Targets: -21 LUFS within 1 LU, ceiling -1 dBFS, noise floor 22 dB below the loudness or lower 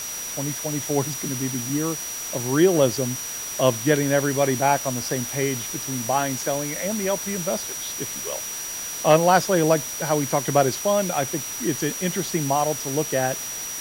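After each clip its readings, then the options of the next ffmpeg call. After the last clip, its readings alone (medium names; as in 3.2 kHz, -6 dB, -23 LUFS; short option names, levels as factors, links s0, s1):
steady tone 5.8 kHz; tone level -31 dBFS; noise floor -32 dBFS; noise floor target -45 dBFS; loudness -23.0 LUFS; peak level -4.5 dBFS; loudness target -21.0 LUFS
-> -af "bandreject=f=5800:w=30"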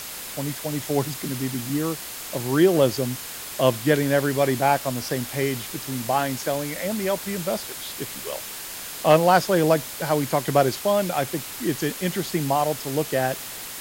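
steady tone not found; noise floor -36 dBFS; noise floor target -46 dBFS
-> -af "afftdn=nr=10:nf=-36"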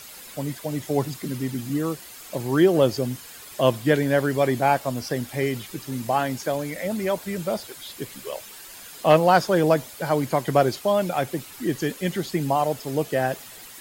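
noise floor -43 dBFS; noise floor target -46 dBFS
-> -af "afftdn=nr=6:nf=-43"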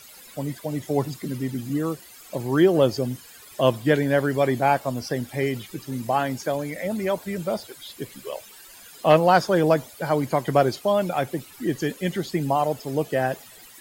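noise floor -47 dBFS; loudness -24.0 LUFS; peak level -5.0 dBFS; loudness target -21.0 LUFS
-> -af "volume=1.41"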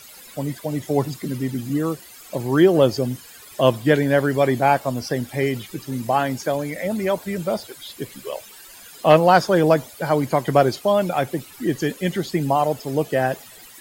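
loudness -21.0 LUFS; peak level -2.0 dBFS; noise floor -44 dBFS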